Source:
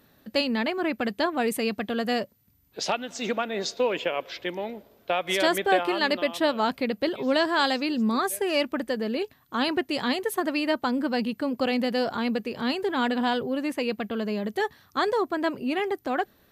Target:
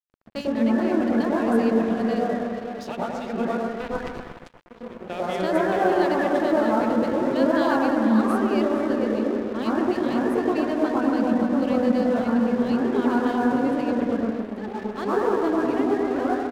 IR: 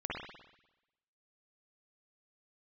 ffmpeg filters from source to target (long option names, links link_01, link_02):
-filter_complex "[0:a]asettb=1/sr,asplit=3[link_01][link_02][link_03];[link_01]atrim=end=10.604[link_04];[link_02]atrim=start=10.6:end=11.29,asetpts=PTS-STARTPTS,afade=type=in:duration=0.004:curve=qsin,afade=type=out:start_time=0.686:duration=0.004:curve=qsin,bandreject=frequency=60:width_type=h:width=6,bandreject=frequency=120:width_type=h:width=6,bandreject=frequency=180:width_type=h:width=6,bandreject=frequency=240:width_type=h:width=6,bandreject=frequency=300:width_type=h:width=6[link_05];[link_03]atrim=start=11.286[link_06];[link_04][link_05]acrossfade=duration=0.004:curve1=hsin:curve2=qsin[link_07];[link_07][link_06]acrossfade=duration=0.004:curve1=qsin:curve2=hsin,asplit=2[link_08][link_09];[link_09]adelay=456,lowpass=frequency=2700:poles=1,volume=-8dB,asplit=2[link_10][link_11];[link_11]adelay=456,lowpass=frequency=2700:poles=1,volume=0.37,asplit=2[link_12][link_13];[link_13]adelay=456,lowpass=frequency=2700:poles=1,volume=0.37,asplit=2[link_14][link_15];[link_15]adelay=456,lowpass=frequency=2700:poles=1,volume=0.37[link_16];[link_08][link_10][link_12][link_14][link_16]amix=inputs=5:normalize=0,asettb=1/sr,asplit=3[link_17][link_18][link_19];[link_17]atrim=end=3.564[link_20];[link_18]atrim=start=3.56:end=4.71,asetpts=PTS-STARTPTS,afade=type=in:duration=0.004:curve=qsin,afade=type=out:start_time=1.146:duration=0.004:curve=qsin,acrusher=bits=2:mix=0:aa=0.5[link_21];[link_19]atrim=start=4.706[link_22];[link_20][link_21]acrossfade=duration=0.004:curve1=hsin:curve2=qsin[link_23];[link_23][link_22]acrossfade=duration=0.004:curve1=qsin:curve2=hsin,lowshelf=frequency=270:gain=10,asplit=3[link_24][link_25][link_26];[link_24]afade=type=out:start_time=14.15:duration=0.02[link_27];[link_25]acompressor=threshold=-29dB:ratio=6,afade=type=in:start_time=14.15:duration=0.02,afade=type=out:start_time=14.63:duration=0.02[link_28];[link_26]afade=type=in:start_time=14.63:duration=0.02[link_29];[link_27][link_28][link_29]amix=inputs=3:normalize=0,aemphasis=mode=reproduction:type=cd,acompressor=mode=upward:threshold=-35dB:ratio=2.5[link_30];[1:a]atrim=start_sample=2205,asetrate=22050,aresample=44100[link_31];[link_30][link_31]afir=irnorm=-1:irlink=0,aeval=exprs='sgn(val(0))*max(abs(val(0))-0.0282,0)':channel_layout=same,volume=-8dB"